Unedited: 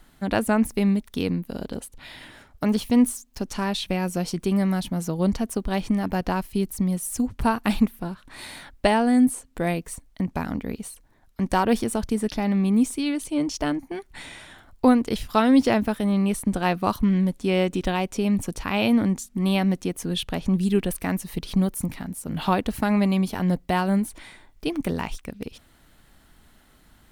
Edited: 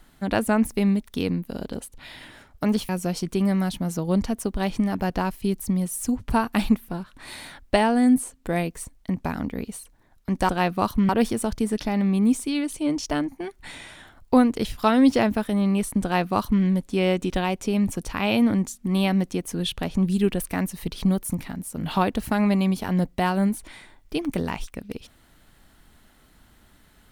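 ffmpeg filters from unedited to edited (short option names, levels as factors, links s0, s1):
-filter_complex "[0:a]asplit=4[s0][s1][s2][s3];[s0]atrim=end=2.892[s4];[s1]atrim=start=3.998:end=11.602[s5];[s2]atrim=start=16.538:end=17.142[s6];[s3]atrim=start=11.598[s7];[s4][s5]acrossfade=d=0.004:c1=hsin:c2=hsin[s8];[s8][s6]acrossfade=d=0.004:c1=hsin:c2=hsin[s9];[s9][s7]acrossfade=d=0.004:c1=hsin:c2=hsin"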